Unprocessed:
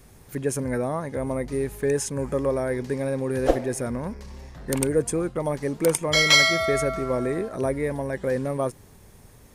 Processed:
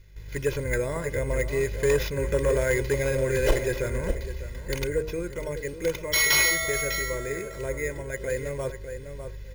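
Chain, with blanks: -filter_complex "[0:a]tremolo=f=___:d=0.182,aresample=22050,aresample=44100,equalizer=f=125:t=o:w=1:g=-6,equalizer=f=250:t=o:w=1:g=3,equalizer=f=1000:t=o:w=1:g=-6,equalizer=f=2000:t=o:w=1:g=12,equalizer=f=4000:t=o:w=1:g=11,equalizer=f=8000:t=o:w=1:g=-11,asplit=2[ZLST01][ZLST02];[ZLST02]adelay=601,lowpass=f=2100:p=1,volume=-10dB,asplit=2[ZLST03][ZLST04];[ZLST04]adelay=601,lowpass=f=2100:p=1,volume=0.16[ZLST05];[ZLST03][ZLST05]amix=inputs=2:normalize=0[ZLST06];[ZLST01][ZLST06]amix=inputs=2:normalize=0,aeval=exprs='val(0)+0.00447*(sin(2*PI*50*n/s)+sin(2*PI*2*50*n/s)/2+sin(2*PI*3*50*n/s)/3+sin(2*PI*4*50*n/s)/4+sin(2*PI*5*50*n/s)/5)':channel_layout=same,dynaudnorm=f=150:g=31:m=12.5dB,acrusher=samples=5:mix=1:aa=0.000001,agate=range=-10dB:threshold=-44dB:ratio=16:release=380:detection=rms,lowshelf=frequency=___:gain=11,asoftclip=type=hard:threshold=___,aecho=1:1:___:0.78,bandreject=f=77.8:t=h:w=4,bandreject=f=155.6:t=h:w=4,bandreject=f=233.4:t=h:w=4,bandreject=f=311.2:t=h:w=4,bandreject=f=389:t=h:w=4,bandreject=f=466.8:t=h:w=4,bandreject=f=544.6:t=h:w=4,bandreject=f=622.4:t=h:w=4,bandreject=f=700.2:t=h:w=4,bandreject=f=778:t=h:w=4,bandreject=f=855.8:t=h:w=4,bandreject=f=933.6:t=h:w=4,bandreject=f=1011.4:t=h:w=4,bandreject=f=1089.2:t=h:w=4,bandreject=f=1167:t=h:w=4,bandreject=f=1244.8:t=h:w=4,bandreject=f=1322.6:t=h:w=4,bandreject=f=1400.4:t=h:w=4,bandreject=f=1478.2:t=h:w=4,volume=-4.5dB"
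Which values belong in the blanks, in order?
49, 190, -14dB, 2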